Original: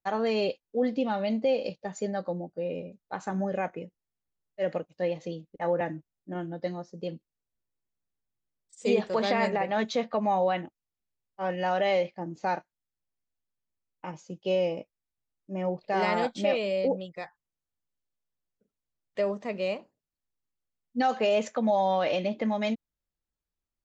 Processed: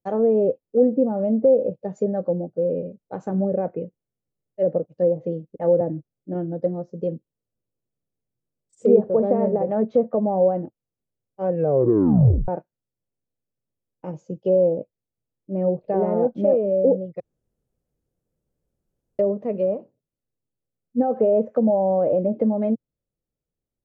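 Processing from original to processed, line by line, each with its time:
0:11.51: tape stop 0.97 s
0:17.20–0:19.19: fill with room tone
whole clip: graphic EQ with 10 bands 125 Hz +11 dB, 250 Hz +4 dB, 500 Hz +11 dB, 1,000 Hz −5 dB, 2,000 Hz −8 dB, 4,000 Hz −10 dB; treble cut that deepens with the level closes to 960 Hz, closed at −17 dBFS; high-shelf EQ 5,600 Hz −6.5 dB

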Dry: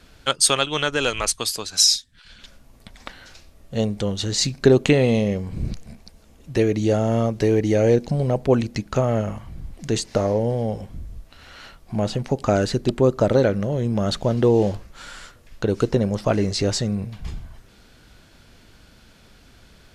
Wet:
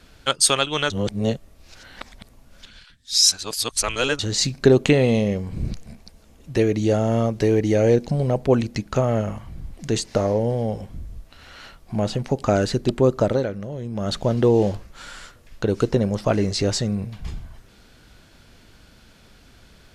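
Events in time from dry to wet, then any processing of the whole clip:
0:00.90–0:04.19: reverse
0:13.19–0:14.19: duck −8 dB, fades 0.28 s

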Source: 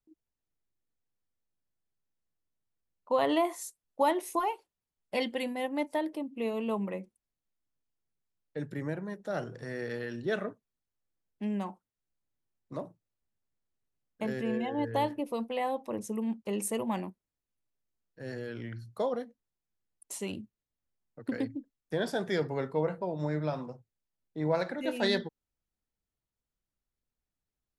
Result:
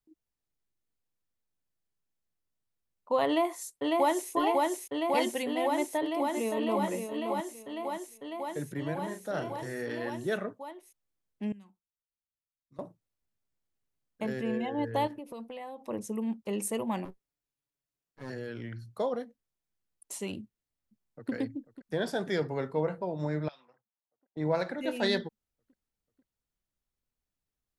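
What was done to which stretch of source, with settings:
0:03.26–0:04.32: delay throw 550 ms, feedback 85%, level −1.5 dB
0:05.76–0:06.83: delay throw 570 ms, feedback 25%, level −6.5 dB
0:08.95–0:10.10: double-tracking delay 37 ms −7 dB
0:11.52–0:12.79: guitar amp tone stack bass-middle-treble 6-0-2
0:15.07–0:15.82: downward compressor 5 to 1, threshold −39 dBFS
0:17.05–0:18.30: lower of the sound and its delayed copy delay 7.1 ms
0:20.42–0:21.32: delay throw 490 ms, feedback 75%, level −15.5 dB
0:23.48–0:24.37: envelope filter 710–3,500 Hz, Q 2.8, up, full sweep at −31 dBFS

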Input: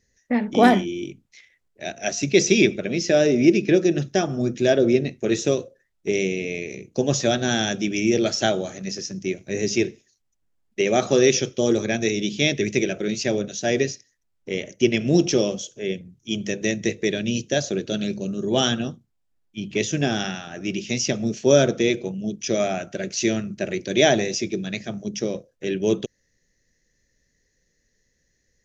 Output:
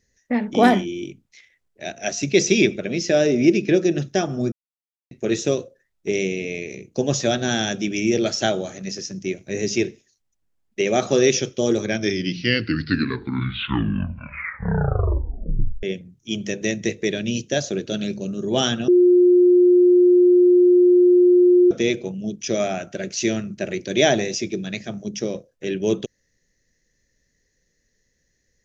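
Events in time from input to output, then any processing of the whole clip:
0:04.52–0:05.11: silence
0:11.80: tape stop 4.03 s
0:18.88–0:21.71: beep over 357 Hz −10 dBFS

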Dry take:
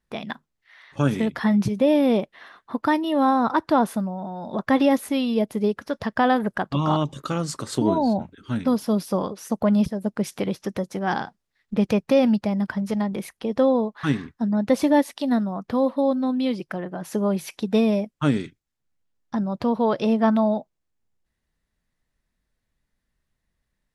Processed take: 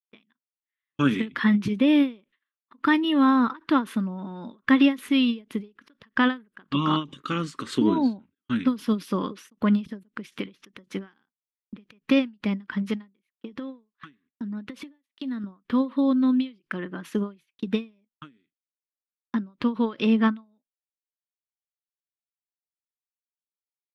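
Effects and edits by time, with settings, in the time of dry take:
0:13.16–0:15.44: downward compressor 10 to 1, threshold −30 dBFS
whole clip: noise gate −38 dBFS, range −45 dB; drawn EQ curve 120 Hz 0 dB, 260 Hz +12 dB, 430 Hz +6 dB, 710 Hz −7 dB, 1,100 Hz +10 dB, 3,100 Hz +15 dB, 5,000 Hz +3 dB, 9,500 Hz 0 dB; every ending faded ahead of time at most 230 dB per second; level −8.5 dB

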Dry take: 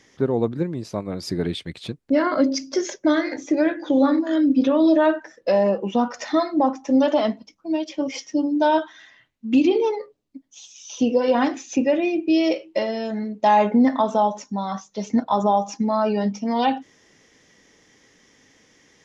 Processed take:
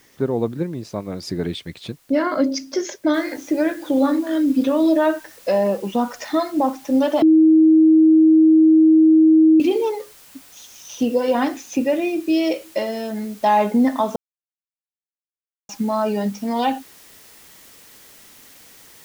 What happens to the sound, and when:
0:03.14: noise floor change −58 dB −47 dB
0:07.22–0:09.60: beep over 317 Hz −8.5 dBFS
0:14.16–0:15.69: silence

